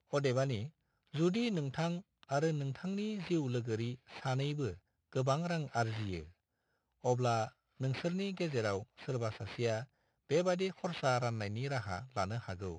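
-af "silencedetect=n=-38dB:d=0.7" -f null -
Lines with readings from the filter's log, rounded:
silence_start: 6.20
silence_end: 7.04 | silence_duration: 0.84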